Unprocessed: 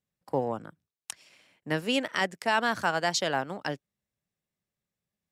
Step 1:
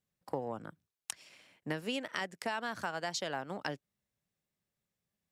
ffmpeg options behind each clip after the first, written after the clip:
-af "acompressor=threshold=-33dB:ratio=6"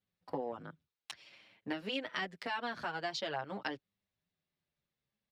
-filter_complex "[0:a]highshelf=f=5.7k:t=q:w=1.5:g=-11.5,asplit=2[a][b];[b]adelay=7.4,afreqshift=-0.51[c];[a][c]amix=inputs=2:normalize=1,volume=1.5dB"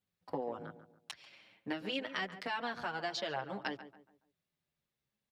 -filter_complex "[0:a]asplit=2[a][b];[b]adelay=141,lowpass=f=1.6k:p=1,volume=-11.5dB,asplit=2[c][d];[d]adelay=141,lowpass=f=1.6k:p=1,volume=0.38,asplit=2[e][f];[f]adelay=141,lowpass=f=1.6k:p=1,volume=0.38,asplit=2[g][h];[h]adelay=141,lowpass=f=1.6k:p=1,volume=0.38[i];[a][c][e][g][i]amix=inputs=5:normalize=0"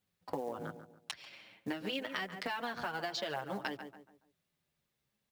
-af "acompressor=threshold=-39dB:ratio=6,acrusher=bits=6:mode=log:mix=0:aa=0.000001,volume=5dB"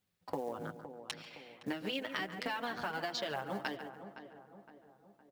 -filter_complex "[0:a]asplit=2[a][b];[b]adelay=514,lowpass=f=1.4k:p=1,volume=-10.5dB,asplit=2[c][d];[d]adelay=514,lowpass=f=1.4k:p=1,volume=0.52,asplit=2[e][f];[f]adelay=514,lowpass=f=1.4k:p=1,volume=0.52,asplit=2[g][h];[h]adelay=514,lowpass=f=1.4k:p=1,volume=0.52,asplit=2[i][j];[j]adelay=514,lowpass=f=1.4k:p=1,volume=0.52,asplit=2[k][l];[l]adelay=514,lowpass=f=1.4k:p=1,volume=0.52[m];[a][c][e][g][i][k][m]amix=inputs=7:normalize=0"

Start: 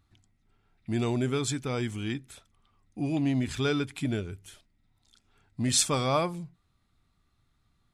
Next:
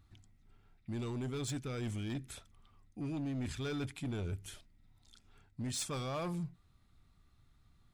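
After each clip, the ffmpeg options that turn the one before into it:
-af "areverse,acompressor=threshold=-37dB:ratio=4,areverse,lowshelf=f=140:g=6,asoftclip=type=hard:threshold=-33.5dB"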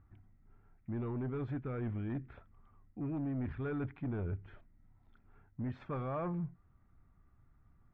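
-af "lowpass=f=1.8k:w=0.5412,lowpass=f=1.8k:w=1.3066,volume=1dB"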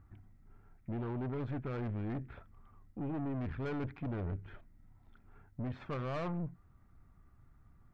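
-af "aeval=exprs='(tanh(100*val(0)+0.45)-tanh(0.45))/100':c=same,volume=5.5dB"

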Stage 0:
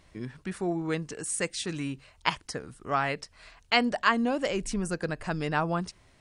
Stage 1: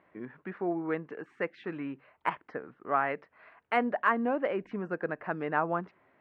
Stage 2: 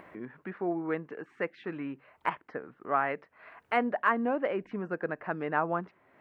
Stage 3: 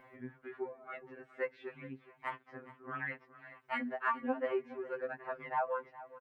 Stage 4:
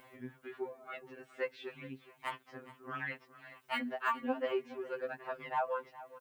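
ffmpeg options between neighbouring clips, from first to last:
-af "lowpass=f=2k:w=0.5412,lowpass=f=2k:w=1.3066,deesser=0.95,highpass=270"
-af "acompressor=mode=upward:threshold=-41dB:ratio=2.5"
-af "aecho=1:1:417|834:0.141|0.0353,afftfilt=real='re*2.45*eq(mod(b,6),0)':imag='im*2.45*eq(mod(b,6),0)':win_size=2048:overlap=0.75,volume=-4dB"
-af "aexciter=amount=4.2:drive=4.5:freq=2.8k"

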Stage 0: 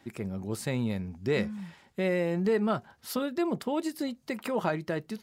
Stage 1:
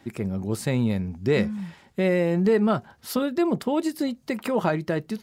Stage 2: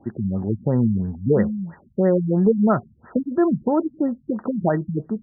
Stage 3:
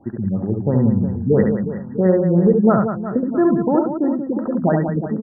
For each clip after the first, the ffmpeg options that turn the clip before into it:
-af "lowshelf=f=470:g=3.5,volume=4dB"
-af "afftfilt=real='re*lt(b*sr/1024,240*pow(2000/240,0.5+0.5*sin(2*PI*3*pts/sr)))':imag='im*lt(b*sr/1024,240*pow(2000/240,0.5+0.5*sin(2*PI*3*pts/sr)))':win_size=1024:overlap=0.75,volume=4.5dB"
-af "aecho=1:1:70|182|361.2|647.9|1107:0.631|0.398|0.251|0.158|0.1,volume=1.5dB"

